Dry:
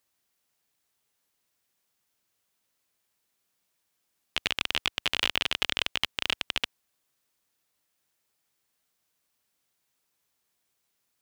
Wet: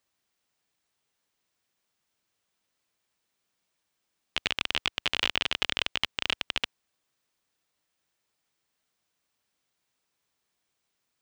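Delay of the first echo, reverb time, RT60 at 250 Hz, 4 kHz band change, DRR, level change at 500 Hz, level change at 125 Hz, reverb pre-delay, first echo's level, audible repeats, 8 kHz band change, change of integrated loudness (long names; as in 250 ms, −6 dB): no echo audible, no reverb audible, no reverb audible, −0.5 dB, no reverb audible, 0.0 dB, 0.0 dB, no reverb audible, no echo audible, no echo audible, −2.5 dB, −0.5 dB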